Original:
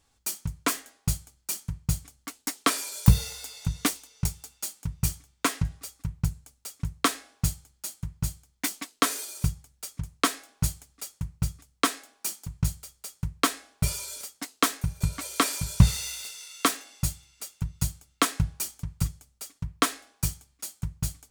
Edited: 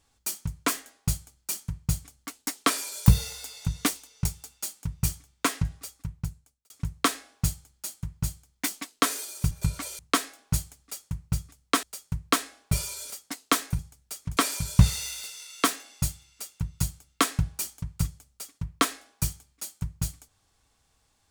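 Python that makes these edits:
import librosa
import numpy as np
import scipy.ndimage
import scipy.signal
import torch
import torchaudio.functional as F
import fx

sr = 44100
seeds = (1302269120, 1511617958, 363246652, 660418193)

y = fx.edit(x, sr, fx.fade_out_span(start_s=5.83, length_s=0.87),
    fx.swap(start_s=9.51, length_s=0.58, other_s=14.9, other_length_s=0.48),
    fx.cut(start_s=11.93, length_s=1.01), tone=tone)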